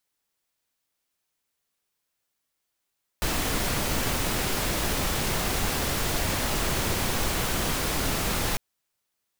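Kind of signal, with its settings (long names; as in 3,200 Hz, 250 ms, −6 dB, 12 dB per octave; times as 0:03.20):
noise pink, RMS −26.5 dBFS 5.35 s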